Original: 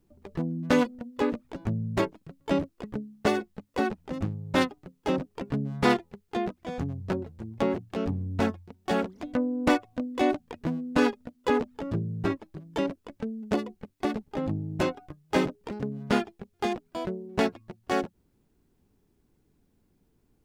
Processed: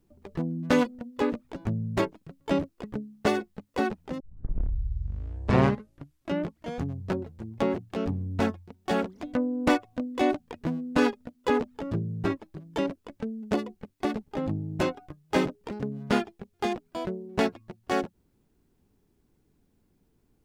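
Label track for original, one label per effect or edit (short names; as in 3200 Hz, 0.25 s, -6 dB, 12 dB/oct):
4.200000	4.200000	tape start 2.62 s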